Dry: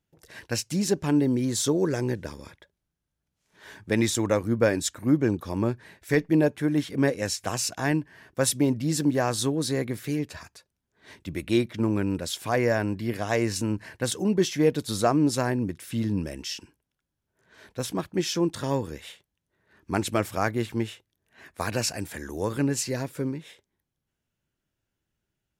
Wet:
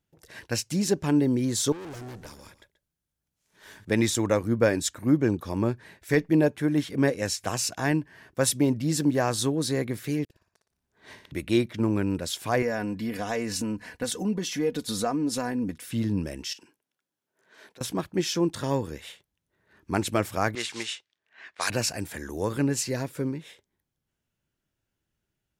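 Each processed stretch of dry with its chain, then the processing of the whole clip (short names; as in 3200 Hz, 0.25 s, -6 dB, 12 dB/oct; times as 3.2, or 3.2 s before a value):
1.72–3.85 high shelf 6300 Hz +8 dB + tube stage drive 38 dB, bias 0.65 + echo 0.132 s -15.5 dB
10.24–11.32 bell 920 Hz +3 dB 1.5 oct + flipped gate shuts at -35 dBFS, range -32 dB + flutter echo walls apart 10 m, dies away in 0.51 s
12.62–15.88 compressor 2.5:1, threshold -27 dBFS + comb 4.1 ms, depth 58%
16.53–17.81 compressor 12:1, threshold -43 dBFS + HPF 270 Hz
20.55–21.7 block floating point 5-bit + weighting filter ITU-R 468 + low-pass opened by the level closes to 1800 Hz, open at -26.5 dBFS
whole clip: dry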